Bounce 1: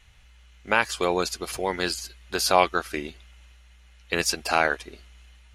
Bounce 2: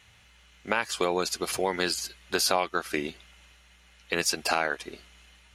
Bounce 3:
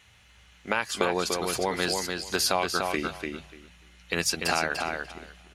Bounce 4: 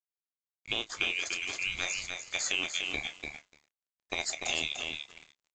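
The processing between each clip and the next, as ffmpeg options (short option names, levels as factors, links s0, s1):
-af "highpass=110,acompressor=threshold=0.0631:ratio=5,alimiter=level_in=3.16:limit=0.891:release=50:level=0:latency=1,volume=0.422"
-filter_complex "[0:a]bandreject=f=50:t=h:w=6,bandreject=f=100:t=h:w=6,bandreject=f=150:t=h:w=6,asubboost=boost=2.5:cutoff=210,asplit=2[s0][s1];[s1]adelay=294,lowpass=f=5000:p=1,volume=0.631,asplit=2[s2][s3];[s3]adelay=294,lowpass=f=5000:p=1,volume=0.17,asplit=2[s4][s5];[s5]adelay=294,lowpass=f=5000:p=1,volume=0.17[s6];[s0][s2][s4][s6]amix=inputs=4:normalize=0"
-filter_complex "[0:a]afftfilt=real='real(if(lt(b,920),b+92*(1-2*mod(floor(b/92),2)),b),0)':imag='imag(if(lt(b,920),b+92*(1-2*mod(floor(b/92),2)),b),0)':win_size=2048:overlap=0.75,aresample=16000,aeval=exprs='sgn(val(0))*max(abs(val(0))-0.00631,0)':c=same,aresample=44100,asplit=2[s0][s1];[s1]adelay=28,volume=0.251[s2];[s0][s2]amix=inputs=2:normalize=0,volume=0.531"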